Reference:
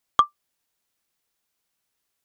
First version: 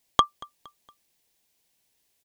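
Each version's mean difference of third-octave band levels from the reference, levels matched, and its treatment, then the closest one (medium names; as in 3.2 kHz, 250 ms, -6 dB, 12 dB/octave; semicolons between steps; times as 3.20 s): 3.5 dB: peaking EQ 1.3 kHz -12 dB 0.55 oct; on a send: feedback delay 232 ms, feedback 45%, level -23 dB; on the sum: trim +6.5 dB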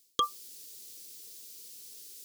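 7.5 dB: FFT filter 130 Hz 0 dB, 490 Hz +10 dB, 700 Hz -23 dB, 4.7 kHz +14 dB; reverse; compression 10:1, threshold -44 dBFS, peak gain reduction 26 dB; reverse; trim +16.5 dB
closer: first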